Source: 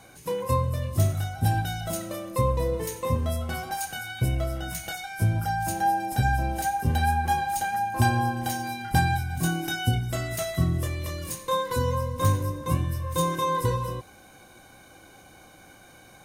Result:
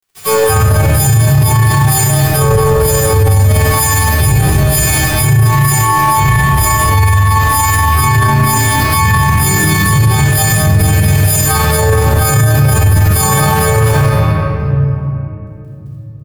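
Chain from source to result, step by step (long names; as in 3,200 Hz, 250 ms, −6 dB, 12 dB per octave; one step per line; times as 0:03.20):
every partial snapped to a pitch grid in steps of 6 semitones
low-shelf EQ 87 Hz +10 dB
pitch-shifted copies added +4 semitones −2 dB
harmonic and percussive parts rebalanced percussive −15 dB
dead-zone distortion −30.5 dBFS
ambience of single reflections 50 ms −11 dB, 63 ms −5 dB, 80 ms −8 dB
convolution reverb RT60 3.0 s, pre-delay 3 ms, DRR −12.5 dB
boost into a limiter +9 dB
level −1 dB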